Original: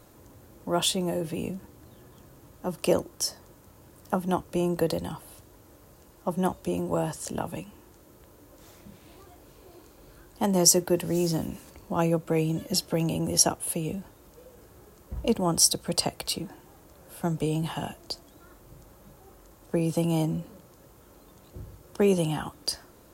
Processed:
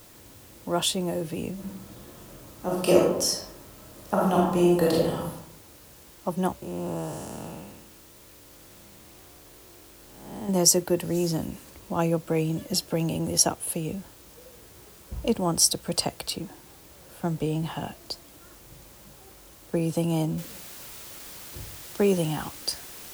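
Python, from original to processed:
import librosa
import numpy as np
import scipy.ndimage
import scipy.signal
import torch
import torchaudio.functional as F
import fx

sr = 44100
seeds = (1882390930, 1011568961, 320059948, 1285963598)

y = fx.reverb_throw(x, sr, start_s=1.53, length_s=3.74, rt60_s=0.84, drr_db=-4.5)
y = fx.spec_blur(y, sr, span_ms=336.0, at=(6.62, 10.49))
y = fx.high_shelf(y, sr, hz=5400.0, db=-7.5, at=(16.3, 18.04))
y = fx.noise_floor_step(y, sr, seeds[0], at_s=20.38, before_db=-53, after_db=-43, tilt_db=0.0)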